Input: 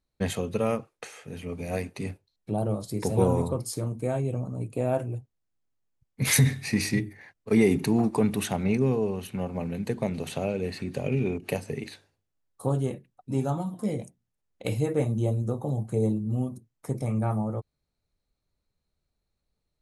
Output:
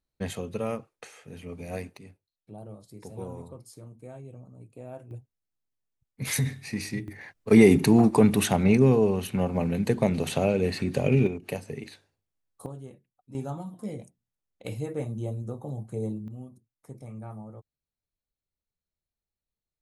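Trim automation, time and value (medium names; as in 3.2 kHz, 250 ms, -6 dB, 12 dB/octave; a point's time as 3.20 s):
-4.5 dB
from 1.97 s -15.5 dB
from 5.11 s -6.5 dB
from 7.08 s +5 dB
from 11.27 s -3.5 dB
from 12.66 s -15 dB
from 13.35 s -6.5 dB
from 16.28 s -13.5 dB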